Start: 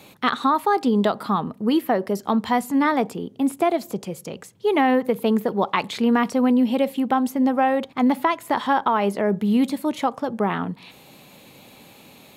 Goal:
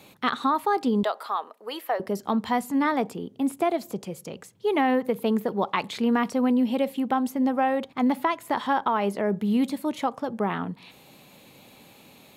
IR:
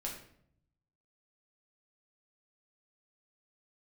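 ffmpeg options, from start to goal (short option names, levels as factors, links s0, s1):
-filter_complex "[0:a]asettb=1/sr,asplit=3[s0][s1][s2];[s0]atrim=end=1.034[s3];[s1]atrim=start=1.03:end=2,asetpts=PTS-STARTPTS,afade=t=in:d=0.004:c=qsin,afade=t=out:st=0.966:d=0.004:c=qsin,highpass=f=500:w=0.5412,highpass=f=500:w=1.3066[s4];[s2]atrim=start=1.996[s5];[s3][s4]acrossfade=d=0.004:c1=hsin:c2=qsin[s6];[s6][s5]acrossfade=d=0.004:c1=qsin:c2=hsin,volume=0.631"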